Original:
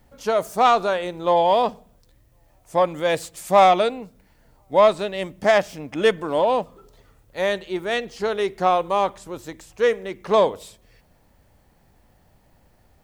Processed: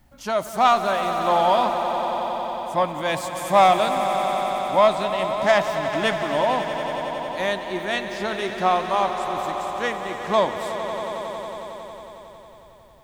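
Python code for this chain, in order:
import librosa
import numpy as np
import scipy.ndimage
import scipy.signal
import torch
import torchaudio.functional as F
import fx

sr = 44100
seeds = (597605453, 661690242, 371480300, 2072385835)

p1 = fx.peak_eq(x, sr, hz=460.0, db=-14.0, octaves=0.33)
y = p1 + fx.echo_swell(p1, sr, ms=91, loudest=5, wet_db=-12.5, dry=0)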